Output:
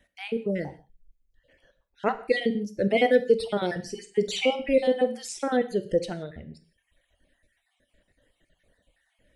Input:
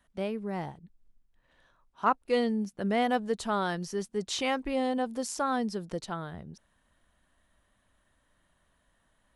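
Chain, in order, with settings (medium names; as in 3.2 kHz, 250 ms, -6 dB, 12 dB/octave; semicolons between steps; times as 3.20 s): random holes in the spectrogram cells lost 35%; FFT filter 270 Hz 0 dB, 530 Hz +7 dB, 1.1 kHz -17 dB, 2 kHz +3 dB, 6.7 kHz -5 dB; reverb removal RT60 1.1 s; 3.79–5.57 s: doubling 49 ms -13 dB; gated-style reverb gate 200 ms falling, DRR 9 dB; trim +6.5 dB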